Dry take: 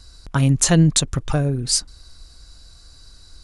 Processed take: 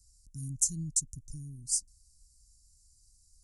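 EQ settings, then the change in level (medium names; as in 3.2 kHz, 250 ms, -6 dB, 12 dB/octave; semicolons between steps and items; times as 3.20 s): inverse Chebyshev band-stop 570–3600 Hz, stop band 40 dB; tilt shelf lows -7.5 dB, about 1.4 kHz; amplifier tone stack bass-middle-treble 6-0-2; 0.0 dB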